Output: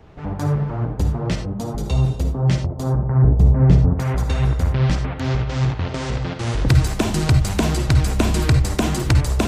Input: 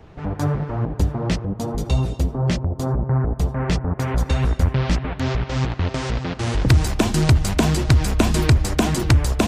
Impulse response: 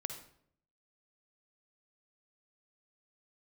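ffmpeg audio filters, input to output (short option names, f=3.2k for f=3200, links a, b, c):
-filter_complex "[0:a]asettb=1/sr,asplit=3[a][b][c];[a]atrim=end=3.224[d];[b]atrim=start=3.22:end=3.97,asetpts=PTS-STARTPTS,afade=t=in:d=0.004:c=qsin,afade=t=out:st=0.746:d=0.004:c=qsin,tiltshelf=f=680:g=8.5[e];[c]atrim=start=3.966[f];[d][e]acrossfade=d=0.004:c1=hsin:c2=qsin[g];[g][f]acrossfade=d=0.004:c1=qsin:c2=hsin[h];[1:a]atrim=start_sample=2205,atrim=end_sample=4410[i];[h][i]afir=irnorm=-1:irlink=0"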